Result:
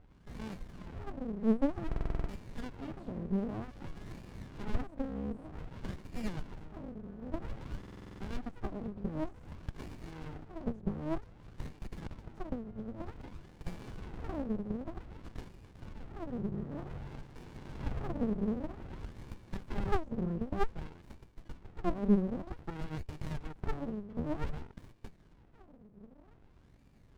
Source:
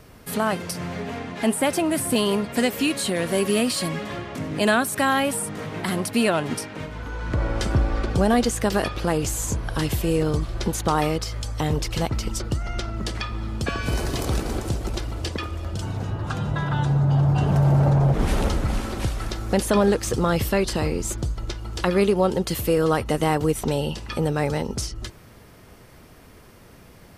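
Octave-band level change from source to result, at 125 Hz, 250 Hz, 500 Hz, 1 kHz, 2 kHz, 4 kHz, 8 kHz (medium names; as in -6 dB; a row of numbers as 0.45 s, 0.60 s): -18.5 dB, -12.0 dB, -18.0 dB, -18.5 dB, -22.5 dB, -27.0 dB, under -30 dB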